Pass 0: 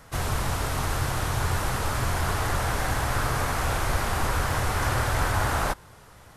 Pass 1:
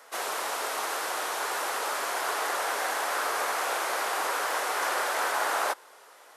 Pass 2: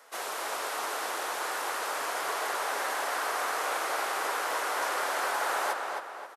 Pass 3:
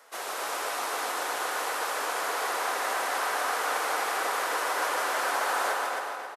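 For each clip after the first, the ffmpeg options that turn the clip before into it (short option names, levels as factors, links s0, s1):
-af "highpass=f=410:w=0.5412,highpass=f=410:w=1.3066"
-filter_complex "[0:a]asplit=2[s0][s1];[s1]adelay=266,lowpass=f=3800:p=1,volume=0.668,asplit=2[s2][s3];[s3]adelay=266,lowpass=f=3800:p=1,volume=0.45,asplit=2[s4][s5];[s5]adelay=266,lowpass=f=3800:p=1,volume=0.45,asplit=2[s6][s7];[s7]adelay=266,lowpass=f=3800:p=1,volume=0.45,asplit=2[s8][s9];[s9]adelay=266,lowpass=f=3800:p=1,volume=0.45,asplit=2[s10][s11];[s11]adelay=266,lowpass=f=3800:p=1,volume=0.45[s12];[s0][s2][s4][s6][s8][s10][s12]amix=inputs=7:normalize=0,volume=0.668"
-af "aecho=1:1:150|270|366|442.8|504.2:0.631|0.398|0.251|0.158|0.1"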